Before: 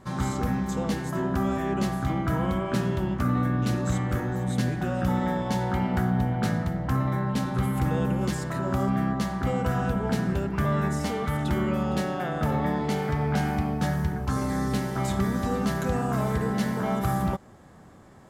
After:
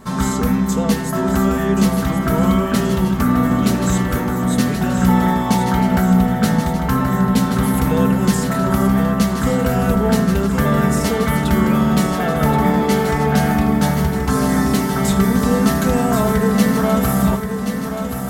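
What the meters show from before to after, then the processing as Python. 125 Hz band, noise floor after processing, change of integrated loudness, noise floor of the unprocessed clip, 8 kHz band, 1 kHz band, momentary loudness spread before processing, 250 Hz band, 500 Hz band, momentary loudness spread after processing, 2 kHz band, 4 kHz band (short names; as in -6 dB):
+7.5 dB, -22 dBFS, +10.0 dB, -49 dBFS, +14.5 dB, +9.5 dB, 3 LU, +11.5 dB, +10.0 dB, 3 LU, +10.0 dB, +11.5 dB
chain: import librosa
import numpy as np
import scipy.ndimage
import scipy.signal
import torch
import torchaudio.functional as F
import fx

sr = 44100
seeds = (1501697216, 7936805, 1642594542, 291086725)

y = fx.high_shelf(x, sr, hz=9200.0, db=10.5)
y = y + 0.62 * np.pad(y, (int(4.5 * sr / 1000.0), 0))[:len(y)]
y = fx.echo_feedback(y, sr, ms=1078, feedback_pct=58, wet_db=-8.0)
y = y * 10.0 ** (8.0 / 20.0)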